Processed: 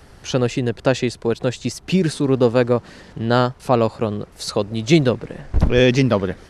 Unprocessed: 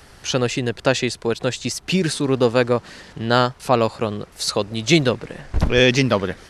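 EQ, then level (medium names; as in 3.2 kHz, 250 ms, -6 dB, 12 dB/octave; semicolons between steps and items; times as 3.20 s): tilt shelf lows +4 dB, about 930 Hz; -1.0 dB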